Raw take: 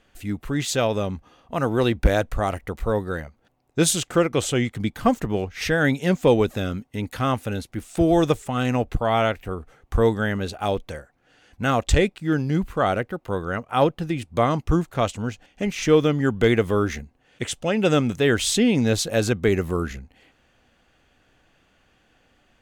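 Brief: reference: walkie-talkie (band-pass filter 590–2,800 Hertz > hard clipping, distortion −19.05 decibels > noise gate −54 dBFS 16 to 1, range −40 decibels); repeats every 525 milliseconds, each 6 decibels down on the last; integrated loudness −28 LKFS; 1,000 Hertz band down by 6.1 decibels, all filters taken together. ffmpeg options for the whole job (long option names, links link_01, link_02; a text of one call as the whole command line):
ffmpeg -i in.wav -af "highpass=590,lowpass=2800,equalizer=frequency=1000:width_type=o:gain=-7.5,aecho=1:1:525|1050|1575|2100|2625|3150:0.501|0.251|0.125|0.0626|0.0313|0.0157,asoftclip=type=hard:threshold=-18.5dB,agate=range=-40dB:threshold=-54dB:ratio=16,volume=2.5dB" out.wav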